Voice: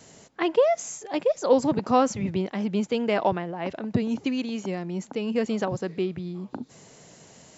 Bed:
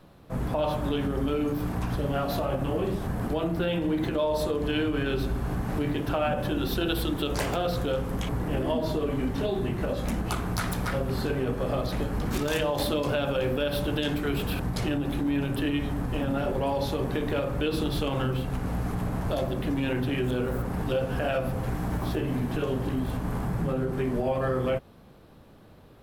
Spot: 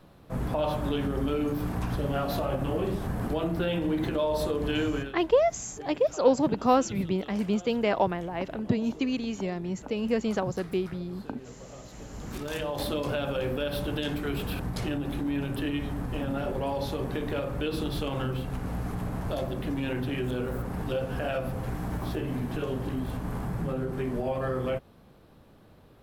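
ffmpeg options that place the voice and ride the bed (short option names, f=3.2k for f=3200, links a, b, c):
-filter_complex "[0:a]adelay=4750,volume=-1.5dB[a];[1:a]volume=14dB,afade=t=out:st=4.93:d=0.2:silence=0.141254,afade=t=in:st=11.91:d=1.06:silence=0.177828[b];[a][b]amix=inputs=2:normalize=0"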